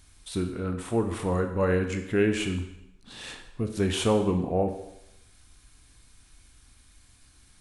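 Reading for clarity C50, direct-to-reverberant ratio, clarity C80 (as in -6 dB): 8.5 dB, 5.5 dB, 11.0 dB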